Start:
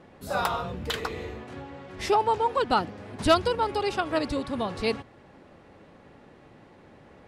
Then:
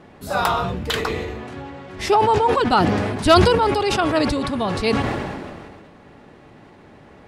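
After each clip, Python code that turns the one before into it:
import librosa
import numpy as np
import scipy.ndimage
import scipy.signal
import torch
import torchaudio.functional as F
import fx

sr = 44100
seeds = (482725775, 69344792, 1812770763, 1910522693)

y = fx.notch(x, sr, hz=520.0, q=12.0)
y = fx.sustainer(y, sr, db_per_s=29.0)
y = y * librosa.db_to_amplitude(6.0)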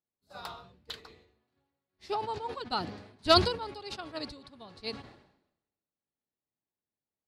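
y = fx.peak_eq(x, sr, hz=4300.0, db=11.0, octaves=0.54)
y = fx.upward_expand(y, sr, threshold_db=-38.0, expansion=2.5)
y = y * librosa.db_to_amplitude(-8.5)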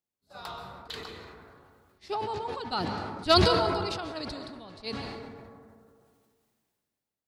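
y = fx.rev_plate(x, sr, seeds[0], rt60_s=1.8, hf_ratio=0.3, predelay_ms=120, drr_db=11.5)
y = fx.sustainer(y, sr, db_per_s=26.0)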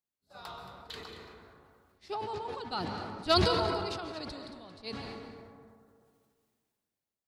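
y = x + 10.0 ** (-12.0 / 20.0) * np.pad(x, (int(225 * sr / 1000.0), 0))[:len(x)]
y = y * librosa.db_to_amplitude(-4.5)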